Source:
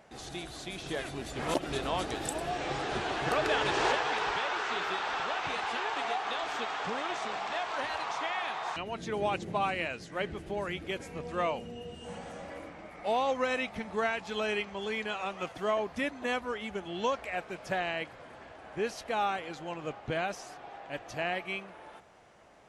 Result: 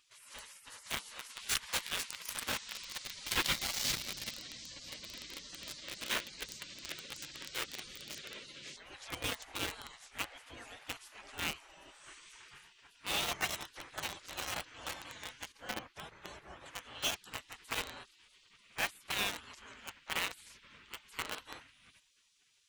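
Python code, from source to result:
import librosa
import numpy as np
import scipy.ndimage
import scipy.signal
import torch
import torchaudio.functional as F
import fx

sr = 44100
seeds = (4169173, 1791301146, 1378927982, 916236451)

p1 = fx.spec_gate(x, sr, threshold_db=-20, keep='weak')
p2 = fx.high_shelf(p1, sr, hz=2700.0, db=-10.5, at=(15.52, 16.66))
p3 = fx.quant_companded(p2, sr, bits=2)
p4 = p2 + (p3 * 10.0 ** (-4.0 / 20.0))
y = p4 * 10.0 ** (1.0 / 20.0)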